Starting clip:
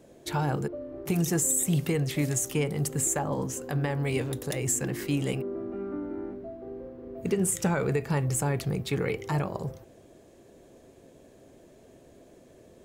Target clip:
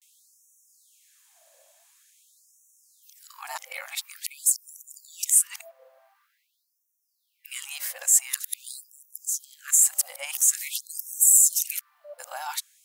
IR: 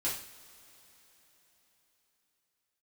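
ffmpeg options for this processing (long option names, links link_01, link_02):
-af "areverse,crystalizer=i=3.5:c=0,afftfilt=real='re*gte(b*sr/1024,510*pow(5600/510,0.5+0.5*sin(2*PI*0.47*pts/sr)))':imag='im*gte(b*sr/1024,510*pow(5600/510,0.5+0.5*sin(2*PI*0.47*pts/sr)))':win_size=1024:overlap=0.75,volume=-3dB"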